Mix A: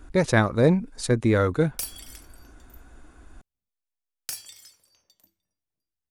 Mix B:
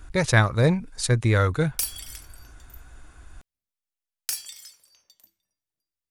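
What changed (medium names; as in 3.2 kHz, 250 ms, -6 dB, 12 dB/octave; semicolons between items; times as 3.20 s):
speech: add resonant low shelf 170 Hz +7.5 dB, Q 1.5; master: add tilt shelf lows -5 dB, about 810 Hz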